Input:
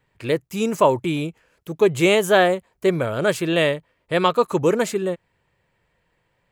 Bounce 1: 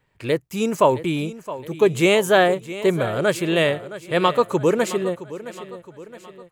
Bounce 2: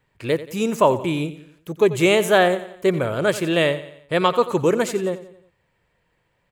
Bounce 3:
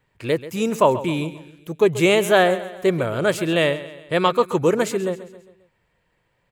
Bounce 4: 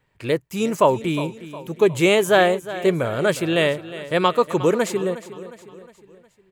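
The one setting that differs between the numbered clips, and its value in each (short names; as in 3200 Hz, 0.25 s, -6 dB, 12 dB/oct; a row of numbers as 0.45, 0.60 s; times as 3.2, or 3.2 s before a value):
feedback echo, time: 667, 89, 134, 360 ms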